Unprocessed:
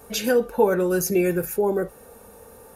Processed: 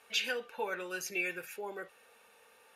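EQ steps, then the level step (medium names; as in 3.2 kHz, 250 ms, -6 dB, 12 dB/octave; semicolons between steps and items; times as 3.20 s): band-pass filter 2.7 kHz, Q 2.1; +2.0 dB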